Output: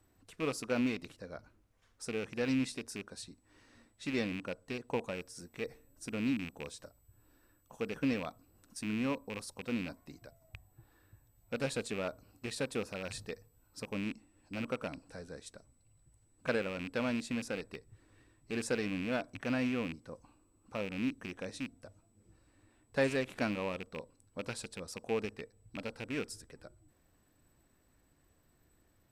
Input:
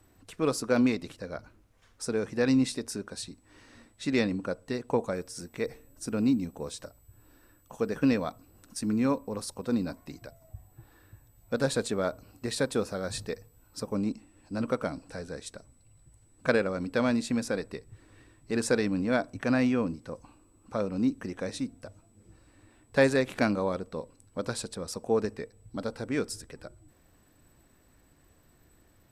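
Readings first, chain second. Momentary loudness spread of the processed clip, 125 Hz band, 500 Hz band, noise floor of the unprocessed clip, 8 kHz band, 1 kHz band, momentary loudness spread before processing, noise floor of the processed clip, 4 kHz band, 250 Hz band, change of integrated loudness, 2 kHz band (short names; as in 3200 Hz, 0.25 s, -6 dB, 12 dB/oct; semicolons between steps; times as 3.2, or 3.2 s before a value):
16 LU, -7.5 dB, -8.0 dB, -63 dBFS, -8.0 dB, -7.5 dB, 16 LU, -71 dBFS, -5.0 dB, -8.0 dB, -7.5 dB, -5.0 dB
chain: rattling part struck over -35 dBFS, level -23 dBFS; gain -8 dB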